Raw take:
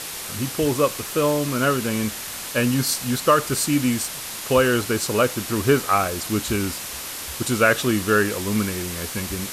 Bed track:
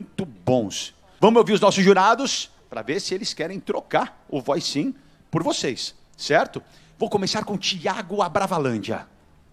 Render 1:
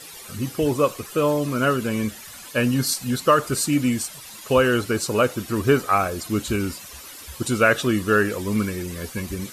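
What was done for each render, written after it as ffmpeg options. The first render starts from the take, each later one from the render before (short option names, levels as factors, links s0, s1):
-af "afftdn=nr=13:nf=-33"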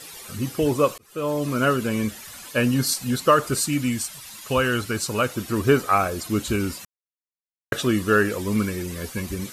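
-filter_complex "[0:a]asettb=1/sr,asplit=3[s0][s1][s2];[s0]atrim=end=3.604[s3];[s1]atrim=start=3.6:end=5.35,asetpts=PTS-STARTPTS,afade=t=in:d=0.004:c=qsin,afade=t=out:st=1.746:d=0.004:c=qsin,equalizer=f=440:w=0.78:g=-6[s4];[s2]atrim=start=5.346[s5];[s3][s4]acrossfade=d=0.004:c1=hsin:c2=qsin[s6];[s6][s5]acrossfade=d=0.004:c1=qsin:c2=hsin,asplit=4[s7][s8][s9][s10];[s7]atrim=end=0.98,asetpts=PTS-STARTPTS,afade=t=out:st=0.976:d=0.004:c=hsin[s11];[s8]atrim=start=0.98:end=6.85,asetpts=PTS-STARTPTS,afade=t=in:d=0.52,afade=t=out:st=5.866:d=0.004:c=hsin[s12];[s9]atrim=start=6.85:end=7.72,asetpts=PTS-STARTPTS,volume=0[s13];[s10]atrim=start=7.72,asetpts=PTS-STARTPTS,afade=t=in:d=0.004:c=hsin[s14];[s11][s12][s13][s14]concat=n=4:v=0:a=1"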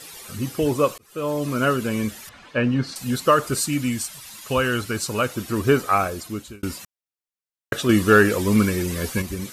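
-filter_complex "[0:a]asettb=1/sr,asplit=3[s0][s1][s2];[s0]atrim=end=2.294[s3];[s1]atrim=start=2.29:end=2.96,asetpts=PTS-STARTPTS,afade=t=in:d=0.004:c=qsin,afade=t=out:st=0.666:d=0.004:c=qsin,lowpass=2700[s4];[s2]atrim=start=2.956[s5];[s3][s4]acrossfade=d=0.004:c1=hsin:c2=qsin[s6];[s6][s5]acrossfade=d=0.004:c1=qsin:c2=hsin,asettb=1/sr,asplit=3[s7][s8][s9];[s7]atrim=end=7.894[s10];[s8]atrim=start=7.89:end=9.22,asetpts=PTS-STARTPTS,afade=t=in:d=0.004:c=qsin,afade=t=out:st=1.326:d=0.004:c=qsin,acontrast=31[s11];[s9]atrim=start=9.216[s12];[s10][s11]acrossfade=d=0.004:c1=hsin:c2=qsin[s13];[s13][s12]acrossfade=d=0.004:c1=qsin:c2=hsin,asplit=2[s14][s15];[s14]atrim=end=6.63,asetpts=PTS-STARTPTS,afade=t=out:st=6.03:d=0.6[s16];[s15]atrim=start=6.63,asetpts=PTS-STARTPTS,afade=t=in:d=0.004:c=hsin[s17];[s16][s17]concat=n=2:v=0:a=1"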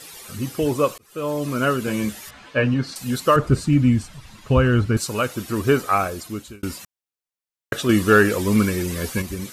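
-filter_complex "[0:a]asettb=1/sr,asplit=3[s0][s1][s2];[s0]atrim=end=1.864[s3];[s1]atrim=start=1.86:end=2.74,asetpts=PTS-STARTPTS,afade=t=in:d=0.004:c=qsin,afade=t=out:st=0.876:d=0.004:c=qsin,asplit=2[s4][s5];[s5]adelay=15,volume=0.708[s6];[s4][s6]amix=inputs=2:normalize=0,atrim=end_sample=38808[s7];[s2]atrim=start=2.736[s8];[s3][s7]acrossfade=d=0.004:c1=hsin:c2=qsin[s9];[s9][s8]acrossfade=d=0.004:c1=qsin:c2=hsin,asettb=1/sr,asplit=3[s10][s11][s12];[s10]atrim=end=3.364[s13];[s11]atrim=start=3.36:end=4.97,asetpts=PTS-STARTPTS,afade=t=in:d=0.004:c=qsin,afade=t=out:st=1.606:d=0.004:c=qsin,aemphasis=mode=reproduction:type=riaa[s14];[s12]atrim=start=4.966[s15];[s13][s14]acrossfade=d=0.004:c1=hsin:c2=qsin[s16];[s16][s15]acrossfade=d=0.004:c1=qsin:c2=hsin"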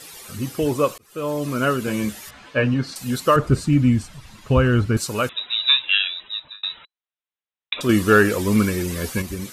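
-filter_complex "[0:a]asettb=1/sr,asplit=3[s0][s1][s2];[s0]atrim=end=5.294[s3];[s1]atrim=start=5.29:end=7.81,asetpts=PTS-STARTPTS,afade=t=in:d=0.004:c=qsin,afade=t=out:st=2.516:d=0.004:c=qsin,lowpass=f=3400:t=q:w=0.5098,lowpass=f=3400:t=q:w=0.6013,lowpass=f=3400:t=q:w=0.9,lowpass=f=3400:t=q:w=2.563,afreqshift=-4000[s4];[s2]atrim=start=7.806[s5];[s3][s4]acrossfade=d=0.004:c1=hsin:c2=qsin[s6];[s6][s5]acrossfade=d=0.004:c1=qsin:c2=hsin"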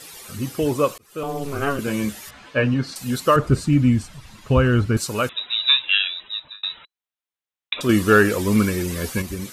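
-filter_complex "[0:a]asettb=1/sr,asplit=3[s0][s1][s2];[s0]atrim=end=1.234[s3];[s1]atrim=start=1.23:end=1.79,asetpts=PTS-STARTPTS,afade=t=in:d=0.004:c=qsin,afade=t=out:st=0.556:d=0.004:c=qsin,aeval=exprs='val(0)*sin(2*PI*140*n/s)':c=same[s4];[s2]atrim=start=1.786[s5];[s3][s4]acrossfade=d=0.004:c1=hsin:c2=qsin[s6];[s6][s5]acrossfade=d=0.004:c1=qsin:c2=hsin"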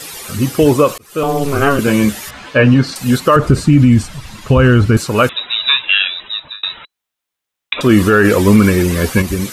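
-filter_complex "[0:a]acrossover=split=3100[s0][s1];[s1]acompressor=threshold=0.0126:ratio=6[s2];[s0][s2]amix=inputs=2:normalize=0,alimiter=level_in=3.76:limit=0.891:release=50:level=0:latency=1"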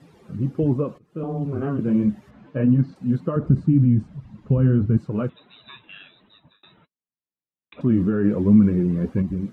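-af "bandpass=f=180:t=q:w=1.4:csg=0,flanger=delay=1:depth=5.7:regen=-44:speed=1.4:shape=sinusoidal"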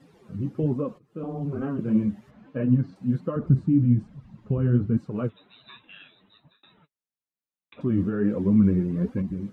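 -af "flanger=delay=3.7:depth=6.9:regen=44:speed=1.2:shape=sinusoidal"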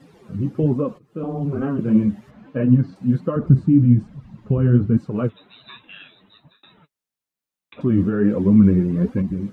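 -af "volume=2"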